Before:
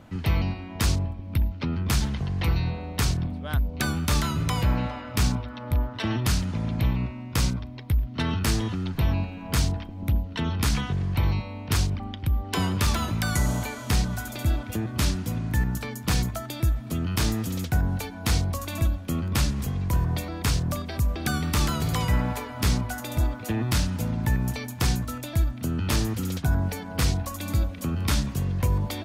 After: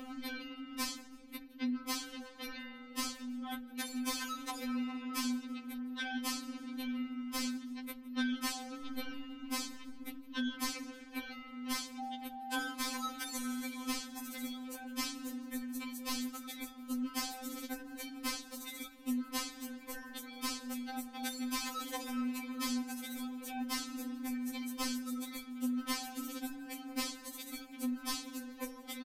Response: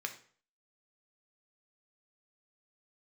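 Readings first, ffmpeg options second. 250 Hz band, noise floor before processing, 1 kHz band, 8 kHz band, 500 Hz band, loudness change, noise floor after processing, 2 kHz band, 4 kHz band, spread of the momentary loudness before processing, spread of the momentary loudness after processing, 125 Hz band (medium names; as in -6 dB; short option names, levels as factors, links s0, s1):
-8.0 dB, -38 dBFS, -9.5 dB, -8.5 dB, -15.5 dB, -13.0 dB, -52 dBFS, -9.5 dB, -8.5 dB, 4 LU, 8 LU, under -40 dB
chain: -filter_complex "[0:a]acompressor=mode=upward:threshold=0.0447:ratio=2.5,asplit=4[s0][s1][s2][s3];[s1]adelay=161,afreqshift=76,volume=0.0891[s4];[s2]adelay=322,afreqshift=152,volume=0.0347[s5];[s3]adelay=483,afreqshift=228,volume=0.0135[s6];[s0][s4][s5][s6]amix=inputs=4:normalize=0,afftfilt=real='re*3.46*eq(mod(b,12),0)':imag='im*3.46*eq(mod(b,12),0)':win_size=2048:overlap=0.75,volume=0.501"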